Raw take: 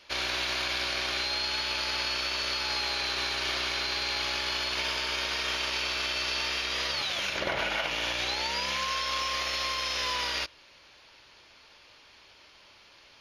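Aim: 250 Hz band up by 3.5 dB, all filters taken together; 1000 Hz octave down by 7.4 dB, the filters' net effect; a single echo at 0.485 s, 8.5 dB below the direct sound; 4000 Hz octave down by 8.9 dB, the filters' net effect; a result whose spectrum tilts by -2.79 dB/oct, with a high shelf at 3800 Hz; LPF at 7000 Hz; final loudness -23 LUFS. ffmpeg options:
-af "lowpass=7k,equalizer=f=250:t=o:g=5.5,equalizer=f=1k:t=o:g=-8.5,highshelf=f=3.8k:g=-4,equalizer=f=4k:t=o:g=-8,aecho=1:1:485:0.376,volume=11.5dB"

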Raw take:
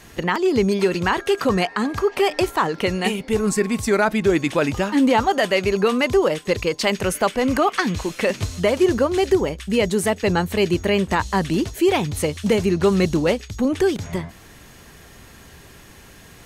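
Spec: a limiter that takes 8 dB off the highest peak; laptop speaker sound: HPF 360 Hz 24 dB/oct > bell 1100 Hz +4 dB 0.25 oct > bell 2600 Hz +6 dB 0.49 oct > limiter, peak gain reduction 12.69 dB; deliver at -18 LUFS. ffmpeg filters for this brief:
-af "alimiter=limit=-15.5dB:level=0:latency=1,highpass=f=360:w=0.5412,highpass=f=360:w=1.3066,equalizer=f=1.1k:t=o:w=0.25:g=4,equalizer=f=2.6k:t=o:w=0.49:g=6,volume=14.5dB,alimiter=limit=-9dB:level=0:latency=1"

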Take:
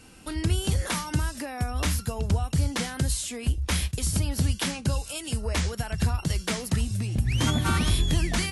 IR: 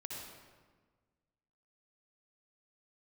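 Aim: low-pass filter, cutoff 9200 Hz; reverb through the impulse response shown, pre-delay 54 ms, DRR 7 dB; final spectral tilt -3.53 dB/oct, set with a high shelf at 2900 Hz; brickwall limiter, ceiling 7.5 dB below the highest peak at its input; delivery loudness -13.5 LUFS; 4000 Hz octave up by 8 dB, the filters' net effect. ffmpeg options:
-filter_complex "[0:a]lowpass=9.2k,highshelf=f=2.9k:g=5.5,equalizer=f=4k:t=o:g=6,alimiter=limit=-17dB:level=0:latency=1,asplit=2[a][b];[1:a]atrim=start_sample=2205,adelay=54[c];[b][c]afir=irnorm=-1:irlink=0,volume=-5.5dB[d];[a][d]amix=inputs=2:normalize=0,volume=13dB"

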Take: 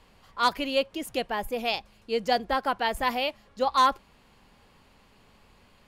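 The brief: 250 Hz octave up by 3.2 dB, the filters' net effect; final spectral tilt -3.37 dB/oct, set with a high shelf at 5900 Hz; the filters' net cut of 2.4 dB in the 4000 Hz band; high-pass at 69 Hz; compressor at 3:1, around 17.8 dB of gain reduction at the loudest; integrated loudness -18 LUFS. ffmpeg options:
-af "highpass=69,equalizer=f=250:t=o:g=3.5,equalizer=f=4k:t=o:g=-5,highshelf=f=5.9k:g=5.5,acompressor=threshold=-43dB:ratio=3,volume=24dB"

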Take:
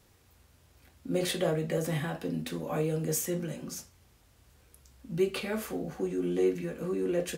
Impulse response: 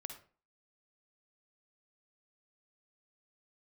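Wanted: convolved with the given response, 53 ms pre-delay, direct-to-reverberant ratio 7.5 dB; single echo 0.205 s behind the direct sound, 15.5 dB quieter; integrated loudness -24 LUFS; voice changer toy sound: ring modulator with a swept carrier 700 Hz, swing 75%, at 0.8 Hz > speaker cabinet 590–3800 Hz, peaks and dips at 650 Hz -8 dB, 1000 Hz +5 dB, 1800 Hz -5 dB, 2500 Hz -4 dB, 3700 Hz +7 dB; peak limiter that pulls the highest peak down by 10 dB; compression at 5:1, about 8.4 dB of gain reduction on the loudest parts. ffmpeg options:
-filter_complex "[0:a]acompressor=threshold=-32dB:ratio=5,alimiter=level_in=9.5dB:limit=-24dB:level=0:latency=1,volume=-9.5dB,aecho=1:1:205:0.168,asplit=2[a][b];[1:a]atrim=start_sample=2205,adelay=53[c];[b][c]afir=irnorm=-1:irlink=0,volume=-4dB[d];[a][d]amix=inputs=2:normalize=0,aeval=exprs='val(0)*sin(2*PI*700*n/s+700*0.75/0.8*sin(2*PI*0.8*n/s))':c=same,highpass=590,equalizer=f=650:t=q:w=4:g=-8,equalizer=f=1k:t=q:w=4:g=5,equalizer=f=1.8k:t=q:w=4:g=-5,equalizer=f=2.5k:t=q:w=4:g=-4,equalizer=f=3.7k:t=q:w=4:g=7,lowpass=f=3.8k:w=0.5412,lowpass=f=3.8k:w=1.3066,volume=22dB"

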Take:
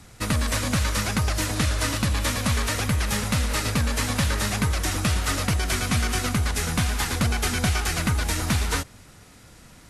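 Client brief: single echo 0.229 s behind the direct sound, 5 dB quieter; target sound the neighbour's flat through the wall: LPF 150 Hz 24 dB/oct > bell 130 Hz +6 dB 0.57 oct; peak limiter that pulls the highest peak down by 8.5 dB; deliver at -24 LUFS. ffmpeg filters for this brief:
-af "alimiter=limit=-20dB:level=0:latency=1,lowpass=f=150:w=0.5412,lowpass=f=150:w=1.3066,equalizer=f=130:t=o:w=0.57:g=6,aecho=1:1:229:0.562,volume=6.5dB"

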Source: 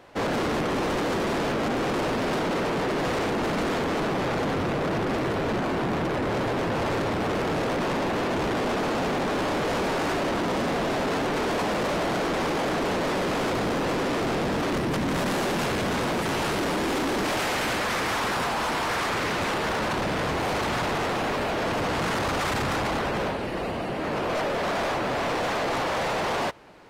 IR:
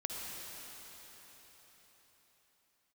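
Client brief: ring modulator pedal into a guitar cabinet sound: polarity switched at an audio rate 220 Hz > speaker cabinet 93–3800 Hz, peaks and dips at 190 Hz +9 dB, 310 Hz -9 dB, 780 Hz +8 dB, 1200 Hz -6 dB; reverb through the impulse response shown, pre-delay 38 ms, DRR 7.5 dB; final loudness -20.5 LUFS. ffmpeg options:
-filter_complex "[0:a]asplit=2[a][b];[1:a]atrim=start_sample=2205,adelay=38[c];[b][c]afir=irnorm=-1:irlink=0,volume=-9.5dB[d];[a][d]amix=inputs=2:normalize=0,aeval=exprs='val(0)*sgn(sin(2*PI*220*n/s))':c=same,highpass=93,equalizer=f=190:t=q:w=4:g=9,equalizer=f=310:t=q:w=4:g=-9,equalizer=f=780:t=q:w=4:g=8,equalizer=f=1.2k:t=q:w=4:g=-6,lowpass=f=3.8k:w=0.5412,lowpass=f=3.8k:w=1.3066,volume=4dB"

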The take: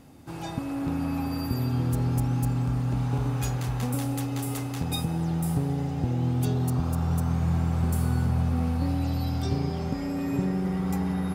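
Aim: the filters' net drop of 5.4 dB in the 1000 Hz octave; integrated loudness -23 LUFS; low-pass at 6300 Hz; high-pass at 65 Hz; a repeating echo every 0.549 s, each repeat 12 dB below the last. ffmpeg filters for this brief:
-af "highpass=65,lowpass=6.3k,equalizer=f=1k:t=o:g=-7.5,aecho=1:1:549|1098|1647:0.251|0.0628|0.0157,volume=5.5dB"

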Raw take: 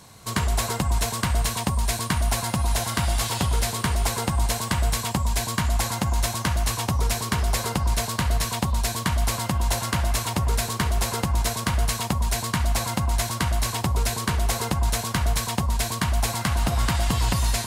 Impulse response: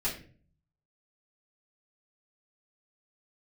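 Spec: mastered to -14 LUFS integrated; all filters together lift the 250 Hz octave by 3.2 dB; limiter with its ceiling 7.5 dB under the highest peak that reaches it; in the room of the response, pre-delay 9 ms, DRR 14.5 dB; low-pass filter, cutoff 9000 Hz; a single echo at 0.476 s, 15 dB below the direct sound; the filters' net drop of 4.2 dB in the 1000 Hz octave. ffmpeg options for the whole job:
-filter_complex "[0:a]lowpass=9k,equalizer=f=250:t=o:g=4.5,equalizer=f=1k:t=o:g=-5.5,alimiter=limit=-16.5dB:level=0:latency=1,aecho=1:1:476:0.178,asplit=2[a][b];[1:a]atrim=start_sample=2205,adelay=9[c];[b][c]afir=irnorm=-1:irlink=0,volume=-20dB[d];[a][d]amix=inputs=2:normalize=0,volume=12dB"

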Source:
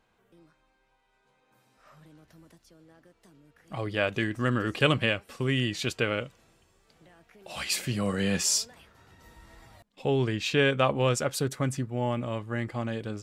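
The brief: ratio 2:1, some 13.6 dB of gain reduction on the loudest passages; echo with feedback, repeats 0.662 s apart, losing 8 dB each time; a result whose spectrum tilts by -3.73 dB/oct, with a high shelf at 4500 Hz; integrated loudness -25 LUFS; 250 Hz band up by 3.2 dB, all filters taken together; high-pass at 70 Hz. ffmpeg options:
-af "highpass=70,equalizer=f=250:t=o:g=4,highshelf=f=4.5k:g=8.5,acompressor=threshold=-42dB:ratio=2,aecho=1:1:662|1324|1986|2648|3310:0.398|0.159|0.0637|0.0255|0.0102,volume=12dB"

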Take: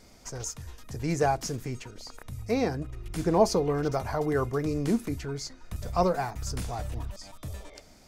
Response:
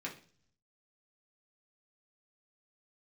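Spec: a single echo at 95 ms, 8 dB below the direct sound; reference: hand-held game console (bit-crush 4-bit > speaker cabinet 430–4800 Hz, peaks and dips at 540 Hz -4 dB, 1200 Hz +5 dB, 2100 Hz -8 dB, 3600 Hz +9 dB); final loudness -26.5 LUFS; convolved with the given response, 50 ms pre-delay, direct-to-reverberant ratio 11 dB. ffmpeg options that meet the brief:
-filter_complex "[0:a]aecho=1:1:95:0.398,asplit=2[a][b];[1:a]atrim=start_sample=2205,adelay=50[c];[b][c]afir=irnorm=-1:irlink=0,volume=-12dB[d];[a][d]amix=inputs=2:normalize=0,acrusher=bits=3:mix=0:aa=0.000001,highpass=430,equalizer=f=540:t=q:w=4:g=-4,equalizer=f=1.2k:t=q:w=4:g=5,equalizer=f=2.1k:t=q:w=4:g=-8,equalizer=f=3.6k:t=q:w=4:g=9,lowpass=f=4.8k:w=0.5412,lowpass=f=4.8k:w=1.3066,volume=1dB"

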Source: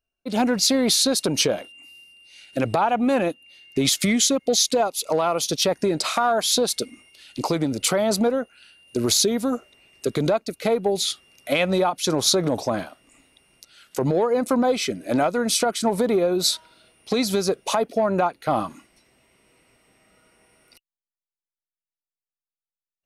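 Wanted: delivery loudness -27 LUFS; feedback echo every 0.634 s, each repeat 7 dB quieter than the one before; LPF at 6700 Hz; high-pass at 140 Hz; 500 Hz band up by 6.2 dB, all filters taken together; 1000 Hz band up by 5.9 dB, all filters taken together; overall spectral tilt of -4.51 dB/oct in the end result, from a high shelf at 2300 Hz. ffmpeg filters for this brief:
-af "highpass=140,lowpass=6.7k,equalizer=f=500:t=o:g=6,equalizer=f=1k:t=o:g=6.5,highshelf=f=2.3k:g=-5.5,aecho=1:1:634|1268|1902|2536|3170:0.447|0.201|0.0905|0.0407|0.0183,volume=-8.5dB"

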